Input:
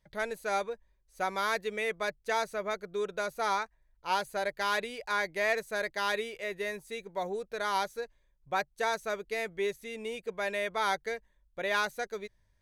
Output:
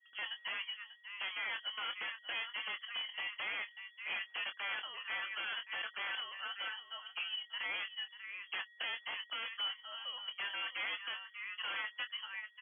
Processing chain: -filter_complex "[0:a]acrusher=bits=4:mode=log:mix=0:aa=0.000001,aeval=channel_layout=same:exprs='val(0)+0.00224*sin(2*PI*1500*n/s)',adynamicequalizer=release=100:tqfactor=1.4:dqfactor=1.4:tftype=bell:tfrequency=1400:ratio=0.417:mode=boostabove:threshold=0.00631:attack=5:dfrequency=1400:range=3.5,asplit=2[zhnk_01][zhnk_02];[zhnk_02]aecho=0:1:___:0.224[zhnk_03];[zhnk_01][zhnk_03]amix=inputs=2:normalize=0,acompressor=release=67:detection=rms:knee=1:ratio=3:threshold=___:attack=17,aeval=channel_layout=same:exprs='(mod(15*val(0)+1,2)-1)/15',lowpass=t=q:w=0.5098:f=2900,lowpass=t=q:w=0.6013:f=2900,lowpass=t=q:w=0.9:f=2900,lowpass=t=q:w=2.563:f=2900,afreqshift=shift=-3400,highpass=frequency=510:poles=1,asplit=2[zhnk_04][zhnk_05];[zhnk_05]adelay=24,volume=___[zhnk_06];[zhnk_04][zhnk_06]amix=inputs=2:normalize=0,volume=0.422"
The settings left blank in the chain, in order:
591, 0.0355, 0.376